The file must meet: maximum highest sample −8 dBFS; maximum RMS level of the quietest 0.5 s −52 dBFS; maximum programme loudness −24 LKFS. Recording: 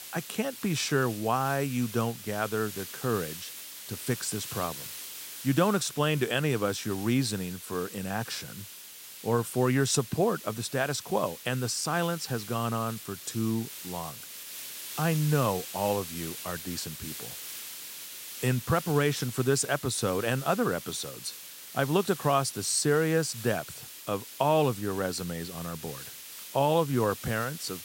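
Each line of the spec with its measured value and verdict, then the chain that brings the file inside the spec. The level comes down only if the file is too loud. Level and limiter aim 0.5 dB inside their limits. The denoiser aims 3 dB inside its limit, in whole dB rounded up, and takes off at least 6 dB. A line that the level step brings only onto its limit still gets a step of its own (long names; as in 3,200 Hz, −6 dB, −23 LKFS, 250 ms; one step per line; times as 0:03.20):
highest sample −10.0 dBFS: in spec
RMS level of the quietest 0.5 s −46 dBFS: out of spec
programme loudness −29.5 LKFS: in spec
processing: broadband denoise 9 dB, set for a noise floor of −46 dBFS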